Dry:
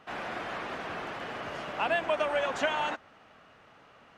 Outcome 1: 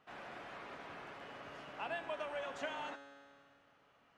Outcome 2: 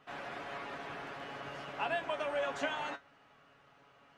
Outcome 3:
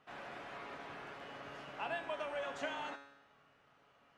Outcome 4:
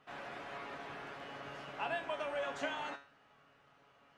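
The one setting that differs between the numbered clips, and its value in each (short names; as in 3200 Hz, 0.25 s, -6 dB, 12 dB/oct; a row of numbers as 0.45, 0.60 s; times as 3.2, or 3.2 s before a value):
resonator, decay: 2.1, 0.15, 0.88, 0.38 s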